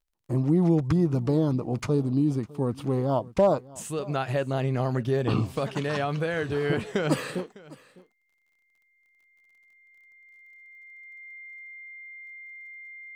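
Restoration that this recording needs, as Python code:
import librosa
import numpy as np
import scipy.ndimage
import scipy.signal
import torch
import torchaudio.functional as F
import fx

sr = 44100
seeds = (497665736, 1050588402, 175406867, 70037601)

y = fx.fix_declip(x, sr, threshold_db=-12.5)
y = fx.fix_declick_ar(y, sr, threshold=6.5)
y = fx.notch(y, sr, hz=2100.0, q=30.0)
y = fx.fix_echo_inverse(y, sr, delay_ms=604, level_db=-21.5)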